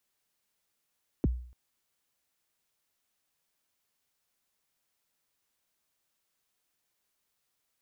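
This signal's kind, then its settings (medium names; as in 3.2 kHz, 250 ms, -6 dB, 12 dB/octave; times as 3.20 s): kick drum length 0.29 s, from 410 Hz, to 61 Hz, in 26 ms, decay 0.52 s, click off, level -20 dB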